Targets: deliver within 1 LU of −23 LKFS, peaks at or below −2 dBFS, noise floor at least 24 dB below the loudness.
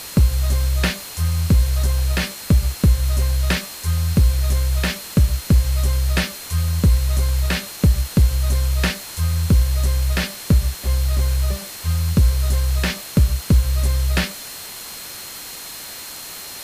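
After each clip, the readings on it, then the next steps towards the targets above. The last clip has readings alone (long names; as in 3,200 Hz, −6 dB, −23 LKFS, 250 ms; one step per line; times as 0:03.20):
interfering tone 4,200 Hz; level of the tone −40 dBFS; background noise floor −34 dBFS; target noise floor −44 dBFS; integrated loudness −20.0 LKFS; sample peak −6.0 dBFS; target loudness −23.0 LKFS
→ notch filter 4,200 Hz, Q 30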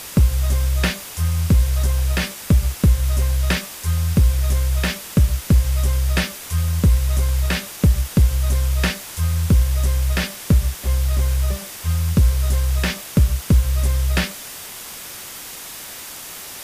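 interfering tone none found; background noise floor −35 dBFS; target noise floor −44 dBFS
→ broadband denoise 9 dB, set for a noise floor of −35 dBFS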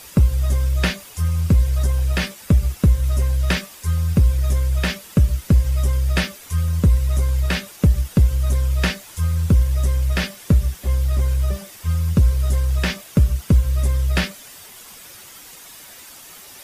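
background noise floor −42 dBFS; target noise floor −44 dBFS
→ broadband denoise 6 dB, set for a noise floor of −42 dBFS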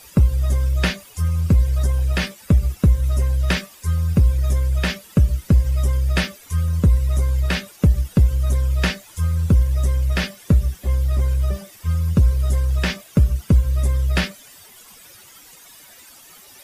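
background noise floor −46 dBFS; integrated loudness −20.0 LKFS; sample peak −7.0 dBFS; target loudness −23.0 LKFS
→ level −3 dB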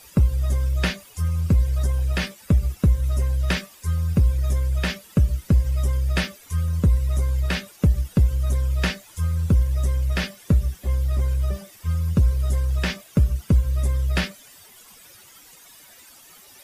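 integrated loudness −23.0 LKFS; sample peak −10.0 dBFS; background noise floor −49 dBFS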